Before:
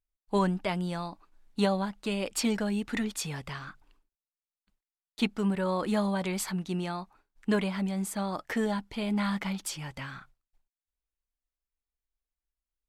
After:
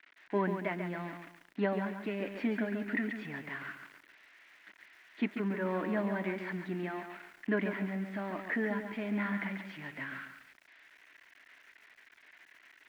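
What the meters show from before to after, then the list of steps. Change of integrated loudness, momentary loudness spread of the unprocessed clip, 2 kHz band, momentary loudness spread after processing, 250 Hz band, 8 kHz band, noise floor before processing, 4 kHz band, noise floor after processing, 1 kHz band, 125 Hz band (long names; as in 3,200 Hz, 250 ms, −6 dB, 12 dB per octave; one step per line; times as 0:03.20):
−4.5 dB, 13 LU, +1.0 dB, 13 LU, −5.0 dB, below −25 dB, below −85 dBFS, −13.5 dB, −63 dBFS, −5.5 dB, −6.5 dB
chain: spike at every zero crossing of −23 dBFS
loudspeaker in its box 280–2,000 Hz, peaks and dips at 290 Hz +5 dB, 500 Hz −9 dB, 830 Hz −8 dB, 1,200 Hz −9 dB, 1,900 Hz +5 dB
feedback echo at a low word length 140 ms, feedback 35%, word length 10 bits, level −7 dB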